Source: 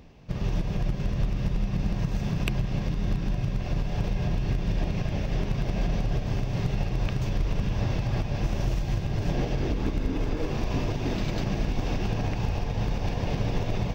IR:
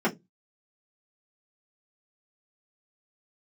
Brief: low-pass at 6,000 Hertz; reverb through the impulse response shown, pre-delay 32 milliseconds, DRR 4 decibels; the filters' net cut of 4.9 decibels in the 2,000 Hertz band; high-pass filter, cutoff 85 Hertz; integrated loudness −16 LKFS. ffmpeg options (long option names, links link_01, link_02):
-filter_complex "[0:a]highpass=85,lowpass=6000,equalizer=frequency=2000:width_type=o:gain=-6.5,asplit=2[link_01][link_02];[1:a]atrim=start_sample=2205,adelay=32[link_03];[link_02][link_03]afir=irnorm=-1:irlink=0,volume=-16.5dB[link_04];[link_01][link_04]amix=inputs=2:normalize=0,volume=12.5dB"